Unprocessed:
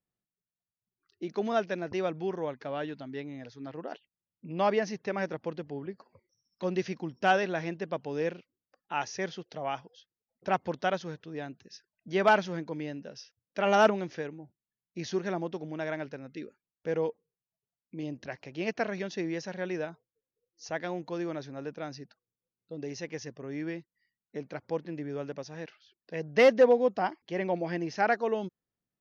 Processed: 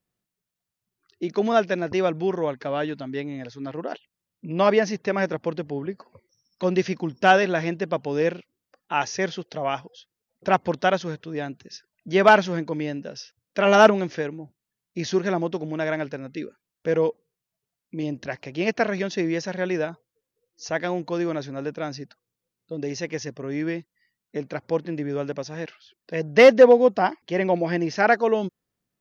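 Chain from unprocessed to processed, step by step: notch 810 Hz, Q 21; gain +8.5 dB

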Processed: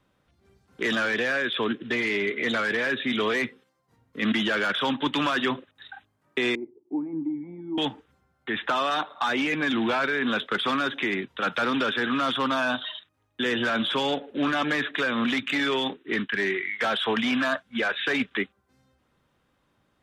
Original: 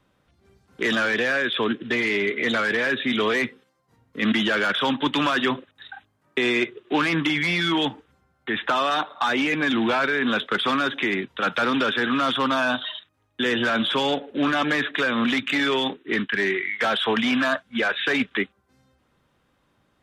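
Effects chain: 6.55–7.78 vocal tract filter u; gain -3 dB

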